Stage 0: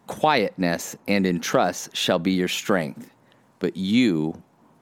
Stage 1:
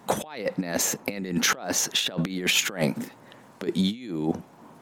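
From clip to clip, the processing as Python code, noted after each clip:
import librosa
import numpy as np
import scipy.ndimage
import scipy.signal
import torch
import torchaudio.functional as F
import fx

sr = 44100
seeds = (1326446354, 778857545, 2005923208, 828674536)

y = fx.low_shelf(x, sr, hz=120.0, db=-7.5)
y = fx.over_compress(y, sr, threshold_db=-28.0, ratio=-0.5)
y = F.gain(torch.from_numpy(y), 2.5).numpy()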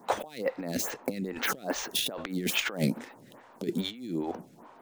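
y = fx.dead_time(x, sr, dead_ms=0.056)
y = fx.stagger_phaser(y, sr, hz=2.4)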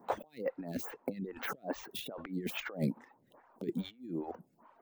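y = fx.peak_eq(x, sr, hz=7100.0, db=-12.5, octaves=2.8)
y = fx.dereverb_blind(y, sr, rt60_s=1.0)
y = F.gain(torch.from_numpy(y), -4.5).numpy()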